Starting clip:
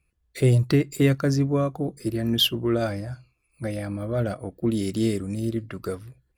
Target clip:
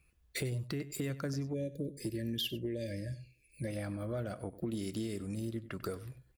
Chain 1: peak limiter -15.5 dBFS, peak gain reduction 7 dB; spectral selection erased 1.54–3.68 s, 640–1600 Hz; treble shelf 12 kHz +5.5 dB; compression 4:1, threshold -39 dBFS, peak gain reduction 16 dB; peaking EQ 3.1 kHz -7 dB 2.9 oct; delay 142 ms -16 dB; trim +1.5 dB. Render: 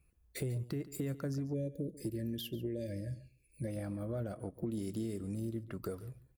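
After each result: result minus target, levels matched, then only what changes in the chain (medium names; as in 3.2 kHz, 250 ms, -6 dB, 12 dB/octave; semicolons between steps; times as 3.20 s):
echo 46 ms late; 4 kHz band -7.5 dB
change: delay 96 ms -16 dB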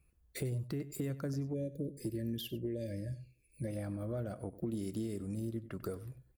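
4 kHz band -7.5 dB
change: peaking EQ 3.1 kHz +2 dB 2.9 oct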